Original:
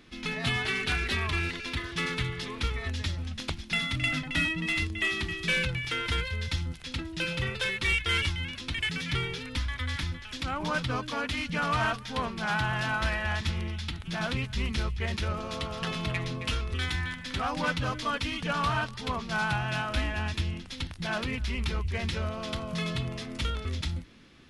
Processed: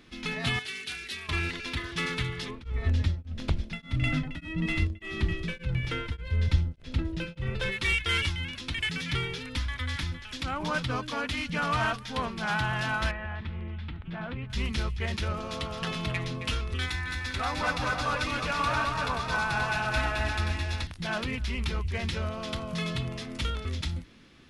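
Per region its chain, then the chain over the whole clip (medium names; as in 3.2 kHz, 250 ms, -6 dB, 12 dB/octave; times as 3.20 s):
0.59–1.29 s: high-pass 760 Hz 6 dB/octave + peaking EQ 960 Hz -13.5 dB 2.6 oct
2.49–7.71 s: tilt EQ -2.5 dB/octave + mains buzz 60 Hz, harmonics 11, -50 dBFS -3 dB/octave + tremolo of two beating tones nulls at 1.7 Hz
13.11–14.50 s: distance through air 490 m + compression 2.5:1, threshold -33 dBFS
16.86–20.87 s: peaking EQ 170 Hz -6.5 dB 1.6 oct + band-stop 3.1 kHz, Q 8.2 + multi-tap echo 214/228/347/529 ms -5.5/-7.5/-9.5/-5.5 dB
whole clip: none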